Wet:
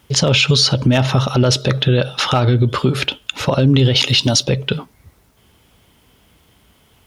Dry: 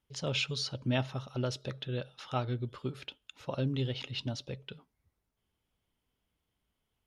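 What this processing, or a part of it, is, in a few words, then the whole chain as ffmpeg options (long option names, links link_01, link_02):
loud club master: -filter_complex "[0:a]asplit=3[link_01][link_02][link_03];[link_01]afade=type=out:start_time=3.95:duration=0.02[link_04];[link_02]bass=frequency=250:gain=-5,treble=frequency=4000:gain=12,afade=type=in:start_time=3.95:duration=0.02,afade=type=out:start_time=4.42:duration=0.02[link_05];[link_03]afade=type=in:start_time=4.42:duration=0.02[link_06];[link_04][link_05][link_06]amix=inputs=3:normalize=0,highpass=50,acompressor=threshold=-39dB:ratio=1.5,asoftclip=type=hard:threshold=-25dB,alimiter=level_in=33dB:limit=-1dB:release=50:level=0:latency=1,volume=-3.5dB"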